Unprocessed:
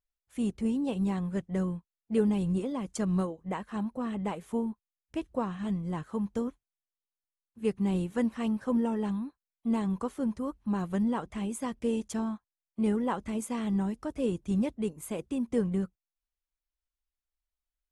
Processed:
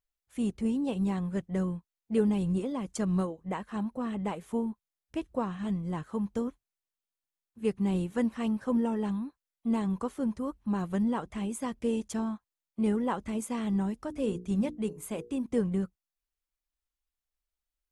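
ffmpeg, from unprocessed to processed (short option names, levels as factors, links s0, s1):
-filter_complex "[0:a]asettb=1/sr,asplit=3[s0][s1][s2];[s0]atrim=end=13.984[s3];[s1]atrim=start=13.98:end=15.46,asetpts=PTS-STARTPTS,afade=t=in:d=0.004:c=qsin,afade=t=out:st=1.476:d=0.004:c=qsin,bandreject=f=60:t=h:w=6,bandreject=f=120:t=h:w=6,bandreject=f=180:t=h:w=6,bandreject=f=240:t=h:w=6,bandreject=f=300:t=h:w=6,bandreject=f=360:t=h:w=6,bandreject=f=420:t=h:w=6,bandreject=f=480:t=h:w=6[s4];[s2]atrim=start=15.456[s5];[s3][s4]acrossfade=d=0.004:c1=hsin:c2=qsin[s6];[s6][s5]acrossfade=d=0.004:c1=qsin:c2=hsin"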